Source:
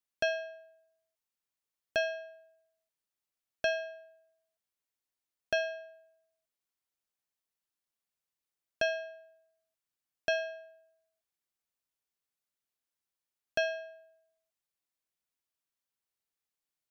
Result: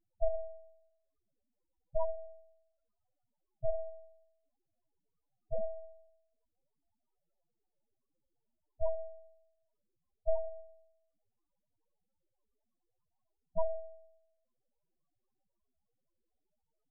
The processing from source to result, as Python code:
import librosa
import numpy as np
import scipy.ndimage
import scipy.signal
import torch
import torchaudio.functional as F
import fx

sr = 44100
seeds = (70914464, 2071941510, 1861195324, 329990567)

y = fx.high_shelf(x, sr, hz=3400.0, db=11.5)
y = fx.sample_hold(y, sr, seeds[0], rate_hz=2600.0, jitter_pct=20)
y = np.maximum(y, 0.0)
y = fx.spec_topn(y, sr, count=4)
y = y * 10.0 ** (6.0 / 20.0)